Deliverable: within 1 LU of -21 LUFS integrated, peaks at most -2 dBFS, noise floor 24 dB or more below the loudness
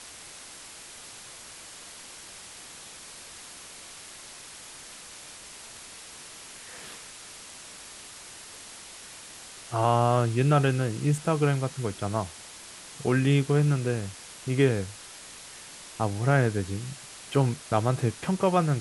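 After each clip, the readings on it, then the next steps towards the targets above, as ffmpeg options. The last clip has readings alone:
noise floor -46 dBFS; noise floor target -51 dBFS; loudness -26.5 LUFS; peak level -9.0 dBFS; loudness target -21.0 LUFS
-> -af "afftdn=nr=6:nf=-46"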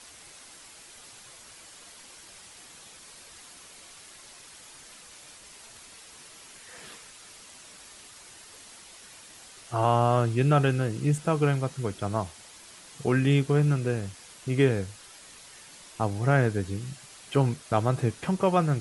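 noise floor -50 dBFS; noise floor target -51 dBFS
-> -af "afftdn=nr=6:nf=-50"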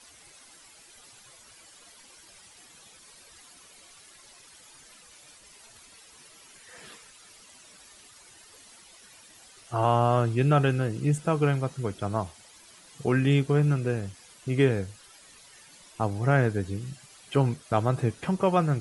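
noise floor -54 dBFS; loudness -26.0 LUFS; peak level -9.0 dBFS; loudness target -21.0 LUFS
-> -af "volume=1.78"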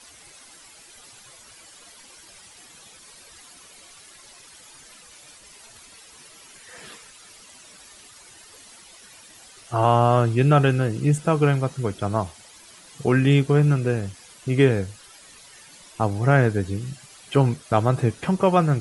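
loudness -21.0 LUFS; peak level -4.0 dBFS; noise floor -48 dBFS

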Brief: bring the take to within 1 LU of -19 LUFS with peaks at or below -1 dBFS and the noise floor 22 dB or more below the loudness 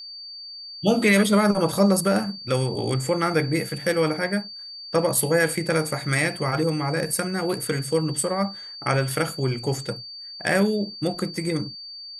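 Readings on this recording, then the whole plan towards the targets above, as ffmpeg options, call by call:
steady tone 4.6 kHz; tone level -36 dBFS; loudness -23.5 LUFS; peak level -6.5 dBFS; loudness target -19.0 LUFS
-> -af "bandreject=f=4600:w=30"
-af "volume=1.68"

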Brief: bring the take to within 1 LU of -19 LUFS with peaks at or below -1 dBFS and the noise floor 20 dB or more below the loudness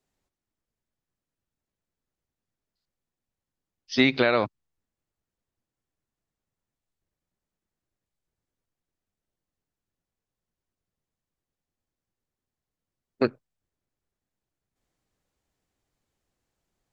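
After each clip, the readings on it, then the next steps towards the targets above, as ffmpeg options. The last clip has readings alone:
loudness -24.5 LUFS; peak level -7.0 dBFS; loudness target -19.0 LUFS
-> -af "volume=1.88"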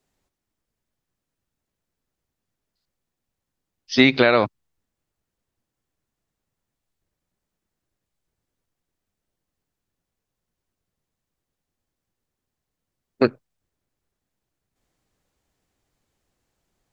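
loudness -19.0 LUFS; peak level -1.5 dBFS; noise floor -84 dBFS

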